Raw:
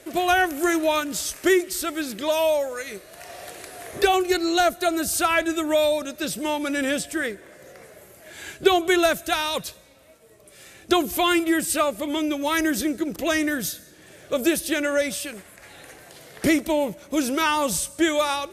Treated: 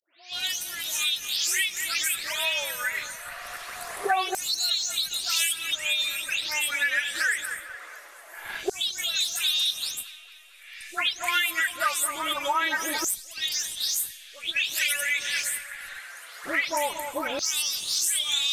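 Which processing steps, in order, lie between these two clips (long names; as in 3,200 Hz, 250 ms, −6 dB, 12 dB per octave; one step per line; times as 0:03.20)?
every frequency bin delayed by itself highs late, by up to 328 ms
delay with a low-pass on its return 225 ms, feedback 54%, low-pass 3,000 Hz, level −13.5 dB
dynamic equaliser 1,200 Hz, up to −4 dB, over −37 dBFS, Q 1.9
auto-filter high-pass saw down 0.23 Hz 850–5,300 Hz
in parallel at −8.5 dB: slack as between gear wheels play −27.5 dBFS
on the sum: downward compressor 4 to 1, threshold −25 dBFS, peak gain reduction 11 dB
level +2.5 dB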